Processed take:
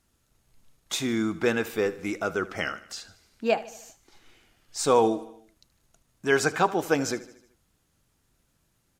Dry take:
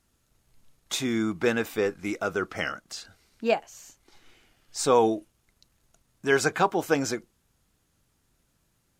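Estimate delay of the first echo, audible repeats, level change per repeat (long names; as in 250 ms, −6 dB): 76 ms, 4, −5.0 dB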